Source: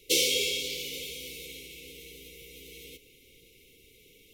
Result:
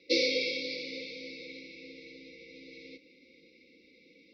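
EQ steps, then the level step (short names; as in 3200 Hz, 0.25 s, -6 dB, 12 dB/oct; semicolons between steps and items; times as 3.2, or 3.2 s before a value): HPF 210 Hz 12 dB/oct; steep low-pass 5000 Hz 72 dB/oct; fixed phaser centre 620 Hz, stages 8; +7.5 dB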